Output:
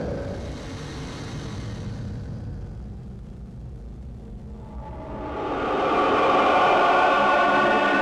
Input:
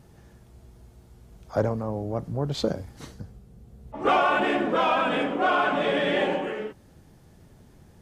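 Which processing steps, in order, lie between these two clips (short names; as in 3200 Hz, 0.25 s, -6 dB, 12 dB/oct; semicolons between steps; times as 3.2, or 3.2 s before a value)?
Paulstretch 5×, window 0.50 s, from 2.82; power-law curve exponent 0.7; air absorption 75 m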